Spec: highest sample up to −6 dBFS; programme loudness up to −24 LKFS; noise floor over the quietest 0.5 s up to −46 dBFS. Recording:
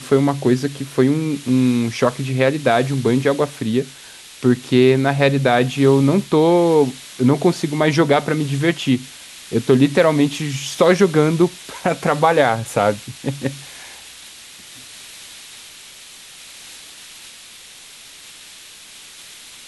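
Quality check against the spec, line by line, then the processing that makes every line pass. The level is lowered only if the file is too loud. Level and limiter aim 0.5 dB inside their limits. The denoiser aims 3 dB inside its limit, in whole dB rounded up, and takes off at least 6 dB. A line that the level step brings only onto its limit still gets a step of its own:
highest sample −2.0 dBFS: out of spec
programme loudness −17.5 LKFS: out of spec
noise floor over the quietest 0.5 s −41 dBFS: out of spec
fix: level −7 dB

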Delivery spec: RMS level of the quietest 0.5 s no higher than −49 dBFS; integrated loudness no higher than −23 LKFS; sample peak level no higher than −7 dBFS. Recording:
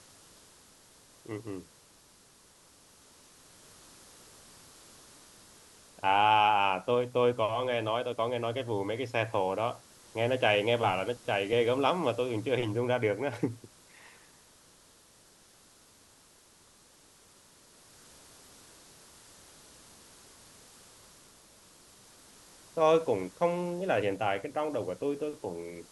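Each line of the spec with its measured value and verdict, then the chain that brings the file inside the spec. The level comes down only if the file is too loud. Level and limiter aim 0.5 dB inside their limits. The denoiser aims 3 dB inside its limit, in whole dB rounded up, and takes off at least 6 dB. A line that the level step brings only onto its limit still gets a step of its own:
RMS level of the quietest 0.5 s −60 dBFS: in spec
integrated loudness −29.5 LKFS: in spec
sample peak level −11.0 dBFS: in spec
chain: no processing needed

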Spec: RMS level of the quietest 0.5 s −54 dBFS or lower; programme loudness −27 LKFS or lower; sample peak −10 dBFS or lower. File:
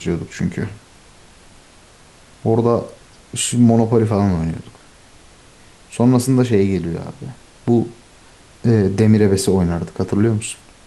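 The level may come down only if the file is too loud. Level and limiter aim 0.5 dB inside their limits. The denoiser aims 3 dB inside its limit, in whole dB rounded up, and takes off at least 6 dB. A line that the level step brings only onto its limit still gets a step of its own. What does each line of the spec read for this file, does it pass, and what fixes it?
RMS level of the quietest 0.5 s −46 dBFS: out of spec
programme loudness −17.5 LKFS: out of spec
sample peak −2.0 dBFS: out of spec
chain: level −10 dB

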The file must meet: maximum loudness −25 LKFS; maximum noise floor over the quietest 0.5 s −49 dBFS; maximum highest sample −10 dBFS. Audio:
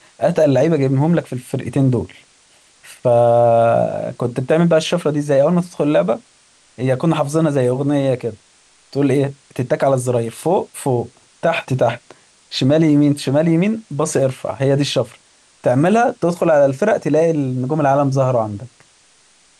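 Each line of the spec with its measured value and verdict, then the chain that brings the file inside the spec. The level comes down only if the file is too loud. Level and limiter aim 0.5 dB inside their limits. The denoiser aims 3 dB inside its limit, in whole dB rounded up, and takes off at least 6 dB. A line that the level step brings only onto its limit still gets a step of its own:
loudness −17.0 LKFS: out of spec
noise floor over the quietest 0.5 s −53 dBFS: in spec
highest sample −5.5 dBFS: out of spec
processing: level −8.5 dB

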